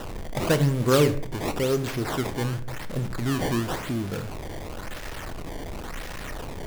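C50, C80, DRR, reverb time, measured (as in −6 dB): 14.0 dB, 17.5 dB, 9.0 dB, 0.60 s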